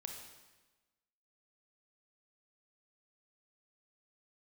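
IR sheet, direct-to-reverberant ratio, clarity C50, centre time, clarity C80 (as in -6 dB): 2.5 dB, 4.0 dB, 41 ms, 6.5 dB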